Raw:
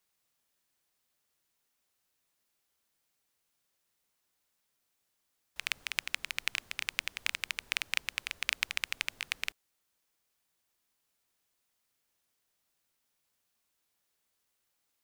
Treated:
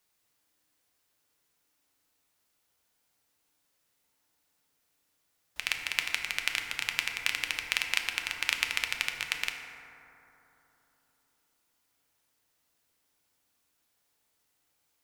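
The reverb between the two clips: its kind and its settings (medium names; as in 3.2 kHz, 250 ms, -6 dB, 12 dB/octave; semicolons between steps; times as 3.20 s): FDN reverb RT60 3.4 s, high-frequency decay 0.3×, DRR 2.5 dB; trim +3 dB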